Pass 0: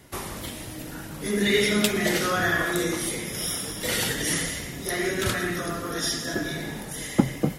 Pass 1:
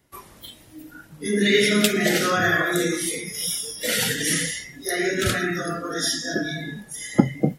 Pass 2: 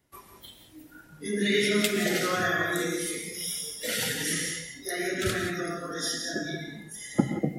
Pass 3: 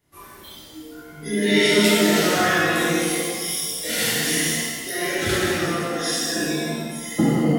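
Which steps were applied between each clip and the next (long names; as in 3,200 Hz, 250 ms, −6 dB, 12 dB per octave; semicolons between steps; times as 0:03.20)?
noise reduction from a noise print of the clip's start 17 dB; level +3.5 dB
reverb whose tail is shaped and stops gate 200 ms rising, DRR 5.5 dB; level −7 dB
reverb with rising layers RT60 1.2 s, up +7 semitones, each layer −8 dB, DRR −8 dB; level −1.5 dB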